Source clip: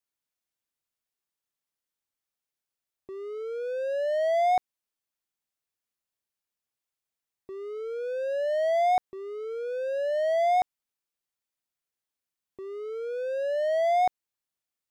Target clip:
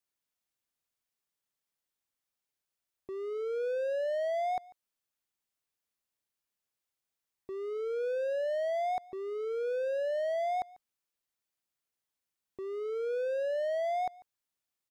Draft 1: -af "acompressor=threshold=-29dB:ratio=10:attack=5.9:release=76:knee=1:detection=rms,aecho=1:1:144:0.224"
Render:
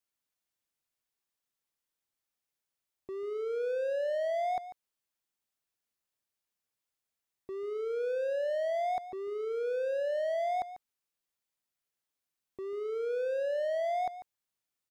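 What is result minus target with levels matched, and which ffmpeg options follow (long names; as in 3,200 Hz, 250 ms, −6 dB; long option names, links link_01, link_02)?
echo-to-direct +9 dB
-af "acompressor=threshold=-29dB:ratio=10:attack=5.9:release=76:knee=1:detection=rms,aecho=1:1:144:0.0794"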